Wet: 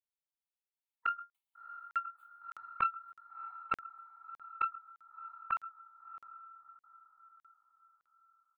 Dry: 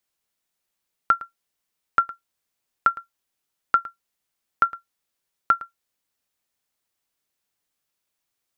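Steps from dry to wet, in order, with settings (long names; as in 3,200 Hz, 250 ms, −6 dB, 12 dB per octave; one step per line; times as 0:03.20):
every overlapping window played backwards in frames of 54 ms
source passing by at 0:02.03, 7 m/s, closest 3 metres
noise gate with hold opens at −50 dBFS
gate on every frequency bin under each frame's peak −25 dB strong
high-pass filter 230 Hz 6 dB per octave
comb filter 2.3 ms, depth 85%
dynamic equaliser 930 Hz, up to −7 dB, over −42 dBFS, Q 1.4
downward compressor 5 to 1, threshold −37 dBFS, peak gain reduction 18 dB
phaser with its sweep stopped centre 1,600 Hz, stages 6
feedback delay with all-pass diffusion 673 ms, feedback 44%, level −12 dB
regular buffer underruns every 0.61 s, samples 2,048, zero, from 0:00.69
highs frequency-modulated by the lows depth 0.98 ms
level +14 dB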